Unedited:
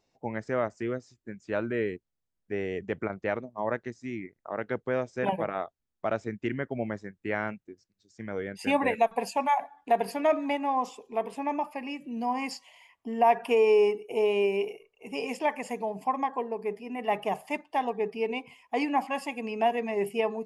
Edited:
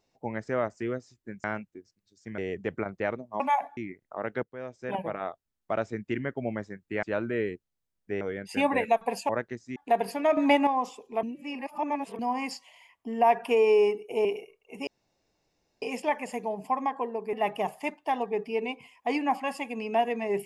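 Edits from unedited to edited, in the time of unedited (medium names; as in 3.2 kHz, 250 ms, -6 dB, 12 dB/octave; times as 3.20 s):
1.44–2.62 s: swap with 7.37–8.31 s
3.64–4.11 s: swap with 9.39–9.76 s
4.77–6.12 s: fade in equal-power, from -18.5 dB
10.37–10.67 s: gain +8 dB
11.23–12.19 s: reverse
14.25–14.57 s: delete
15.19 s: insert room tone 0.95 s
16.70–17.00 s: delete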